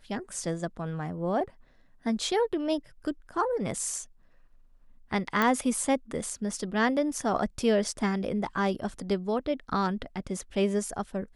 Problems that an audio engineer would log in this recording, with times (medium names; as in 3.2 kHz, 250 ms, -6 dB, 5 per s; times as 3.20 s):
5.42 s: pop -12 dBFS